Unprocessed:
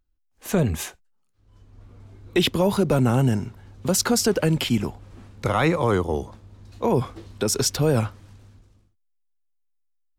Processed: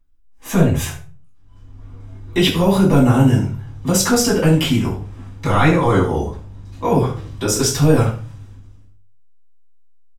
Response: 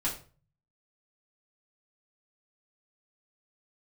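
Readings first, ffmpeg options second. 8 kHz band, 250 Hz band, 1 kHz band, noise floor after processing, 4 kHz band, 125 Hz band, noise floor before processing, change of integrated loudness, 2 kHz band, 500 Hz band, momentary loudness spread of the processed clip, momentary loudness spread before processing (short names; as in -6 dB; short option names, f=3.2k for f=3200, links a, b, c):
+5.0 dB, +7.5 dB, +6.5 dB, -44 dBFS, +4.5 dB, +7.5 dB, -69 dBFS, +6.0 dB, +6.0 dB, +4.5 dB, 14 LU, 12 LU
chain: -filter_complex "[0:a]bandreject=f=4.3k:w=11,aecho=1:1:73:0.188[a];[1:a]atrim=start_sample=2205[b];[a][b]afir=irnorm=-1:irlink=0"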